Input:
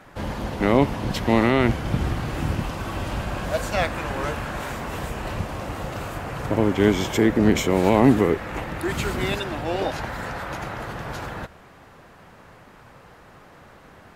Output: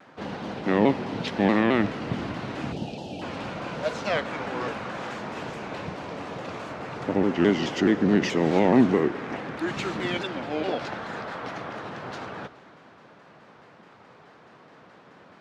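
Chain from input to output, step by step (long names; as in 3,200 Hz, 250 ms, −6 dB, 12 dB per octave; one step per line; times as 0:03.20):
time-frequency box erased 0:02.50–0:02.95, 990–2,700 Hz
Chebyshev band-pass filter 210–5,000 Hz, order 2
convolution reverb RT60 2.5 s, pre-delay 76 ms, DRR 16.5 dB
wrong playback speed 48 kHz file played as 44.1 kHz
pitch modulation by a square or saw wave saw down 4.7 Hz, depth 160 cents
level −2 dB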